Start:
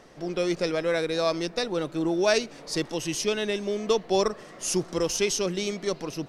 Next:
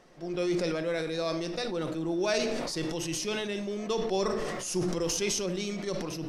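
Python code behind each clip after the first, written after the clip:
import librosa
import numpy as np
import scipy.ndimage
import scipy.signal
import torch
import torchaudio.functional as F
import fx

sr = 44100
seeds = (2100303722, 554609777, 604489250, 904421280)

y = fx.room_shoebox(x, sr, seeds[0], volume_m3=1000.0, walls='furnished', distance_m=0.91)
y = fx.sustainer(y, sr, db_per_s=24.0)
y = y * librosa.db_to_amplitude(-7.0)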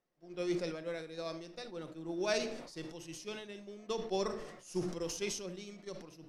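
y = fx.upward_expand(x, sr, threshold_db=-42.0, expansion=2.5)
y = y * librosa.db_to_amplitude(-3.0)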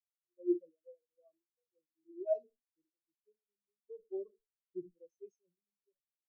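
y = fx.high_shelf(x, sr, hz=6300.0, db=7.5)
y = fx.spectral_expand(y, sr, expansion=4.0)
y = y * librosa.db_to_amplitude(-4.0)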